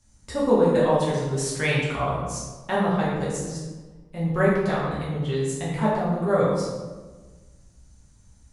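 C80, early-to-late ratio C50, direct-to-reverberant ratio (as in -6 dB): 2.5 dB, 0.0 dB, -7.5 dB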